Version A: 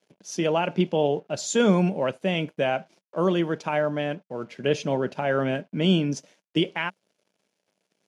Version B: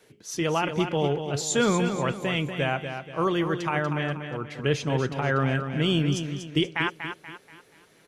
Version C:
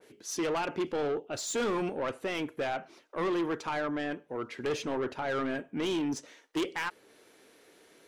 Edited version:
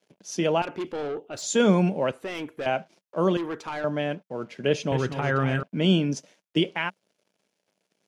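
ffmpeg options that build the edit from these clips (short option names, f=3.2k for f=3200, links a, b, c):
-filter_complex "[2:a]asplit=3[a][b][c];[0:a]asplit=5[d][e][f][g][h];[d]atrim=end=0.622[i];[a]atrim=start=0.618:end=1.422[j];[e]atrim=start=1.418:end=2.122[k];[b]atrim=start=2.118:end=2.662[l];[f]atrim=start=2.658:end=3.372[m];[c]atrim=start=3.368:end=3.842[n];[g]atrim=start=3.838:end=4.922[o];[1:a]atrim=start=4.918:end=5.632[p];[h]atrim=start=5.628[q];[i][j]acrossfade=d=0.004:c1=hsin:c2=hsin[r];[r][k]acrossfade=d=0.004:c1=hsin:c2=hsin[s];[s][l]acrossfade=d=0.004:c1=hsin:c2=hsin[t];[t][m]acrossfade=d=0.004:c1=hsin:c2=hsin[u];[u][n]acrossfade=d=0.004:c1=hsin:c2=hsin[v];[v][o]acrossfade=d=0.004:c1=hsin:c2=hsin[w];[w][p]acrossfade=d=0.004:c1=hsin:c2=hsin[x];[x][q]acrossfade=d=0.004:c1=hsin:c2=hsin"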